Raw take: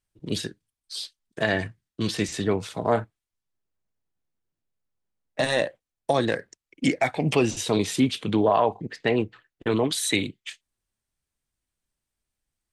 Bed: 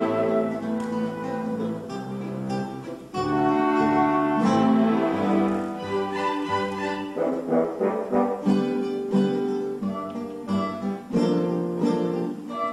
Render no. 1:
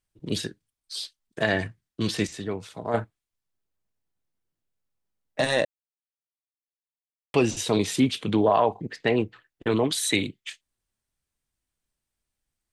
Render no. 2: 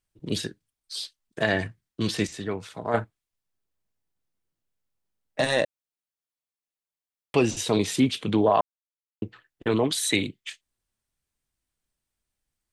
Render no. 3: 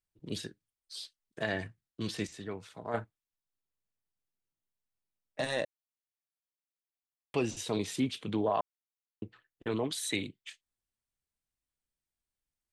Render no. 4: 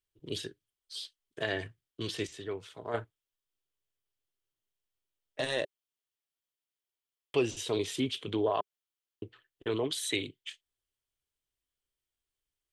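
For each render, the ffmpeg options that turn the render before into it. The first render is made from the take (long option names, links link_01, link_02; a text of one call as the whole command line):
ffmpeg -i in.wav -filter_complex "[0:a]asplit=5[link_01][link_02][link_03][link_04][link_05];[link_01]atrim=end=2.272[link_06];[link_02]atrim=start=2.268:end=2.942,asetpts=PTS-STARTPTS,volume=-7dB[link_07];[link_03]atrim=start=2.938:end=5.65,asetpts=PTS-STARTPTS,afade=type=out:start_time=2.708:duration=0.004:curve=hsin[link_08];[link_04]atrim=start=5.65:end=7.34,asetpts=PTS-STARTPTS,volume=0[link_09];[link_05]atrim=start=7.34,asetpts=PTS-STARTPTS,afade=type=in:duration=0.004:curve=hsin[link_10];[link_06][link_07]acrossfade=duration=0.004:curve1=hsin:curve2=hsin[link_11];[link_08][link_09][link_10]concat=n=3:v=0:a=1[link_12];[link_11][link_12]acrossfade=duration=0.004:curve1=hsin:curve2=hsin" out.wav
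ffmpeg -i in.wav -filter_complex "[0:a]asettb=1/sr,asplit=3[link_01][link_02][link_03];[link_01]atrim=end=2.414[link_04];[link_02]atrim=start=2.41:end=2.99,asetpts=PTS-STARTPTS,afade=type=in:duration=0.004:curve=qsin,afade=type=out:start_time=0.576:duration=0.004:curve=qsin,equalizer=frequency=1600:width_type=o:width=1.3:gain=4.5[link_05];[link_03]atrim=start=2.986[link_06];[link_04][link_05]acrossfade=duration=0.004:curve1=hsin:curve2=qsin[link_07];[link_07][link_06]acrossfade=duration=0.004:curve1=qsin:curve2=hsin,asplit=3[link_08][link_09][link_10];[link_08]atrim=end=8.61,asetpts=PTS-STARTPTS,afade=type=out:start_time=8.606:duration=0.004:curve=hsin[link_11];[link_09]atrim=start=8.61:end=9.22,asetpts=PTS-STARTPTS,volume=0[link_12];[link_10]atrim=start=9.22,asetpts=PTS-STARTPTS,afade=type=in:duration=0.004:curve=hsin[link_13];[link_11][link_12][link_13]concat=n=3:v=0:a=1" out.wav
ffmpeg -i in.wav -af "volume=-9.5dB" out.wav
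ffmpeg -i in.wav -af "equalizer=frequency=200:width_type=o:width=0.33:gain=-12,equalizer=frequency=400:width_type=o:width=0.33:gain=6,equalizer=frequency=800:width_type=o:width=0.33:gain=-3,equalizer=frequency=3150:width_type=o:width=0.33:gain=8" out.wav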